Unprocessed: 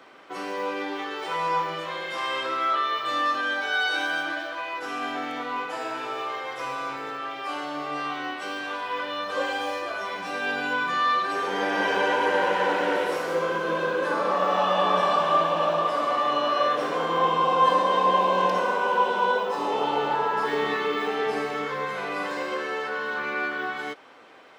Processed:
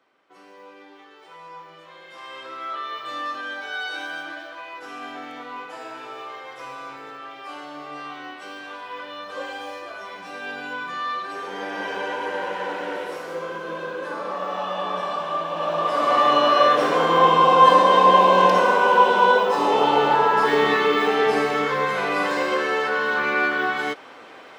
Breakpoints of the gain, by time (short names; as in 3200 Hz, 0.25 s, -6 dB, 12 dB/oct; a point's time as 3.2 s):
1.57 s -16 dB
2.94 s -5 dB
15.44 s -5 dB
16.18 s +7 dB